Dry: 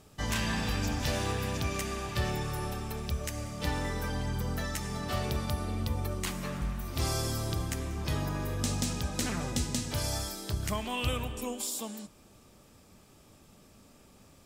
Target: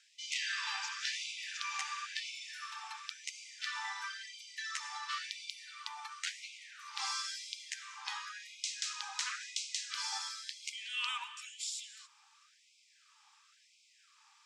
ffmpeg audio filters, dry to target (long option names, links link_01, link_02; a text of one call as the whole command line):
ffmpeg -i in.wav -af "lowpass=frequency=6900:width=0.5412,lowpass=frequency=6900:width=1.3066,afftfilt=real='re*gte(b*sr/1024,770*pow(2100/770,0.5+0.5*sin(2*PI*0.96*pts/sr)))':imag='im*gte(b*sr/1024,770*pow(2100/770,0.5+0.5*sin(2*PI*0.96*pts/sr)))':win_size=1024:overlap=0.75" out.wav